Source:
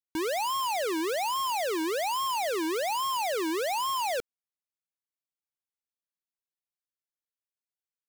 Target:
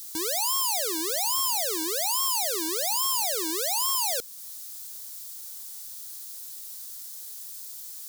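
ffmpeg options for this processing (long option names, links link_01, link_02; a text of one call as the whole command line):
ffmpeg -i in.wav -filter_complex "[0:a]aeval=exprs='val(0)+0.5*0.00473*sgn(val(0))':channel_layout=same,asplit=2[link_01][link_02];[link_02]acompressor=threshold=-47dB:ratio=6,volume=-1.5dB[link_03];[link_01][link_03]amix=inputs=2:normalize=0,aexciter=amount=3.5:drive=8.5:freq=3700,aeval=exprs='0.266*(cos(1*acos(clip(val(0)/0.266,-1,1)))-cos(1*PI/2))+0.00168*(cos(4*acos(clip(val(0)/0.266,-1,1)))-cos(4*PI/2))':channel_layout=same,volume=-5.5dB" out.wav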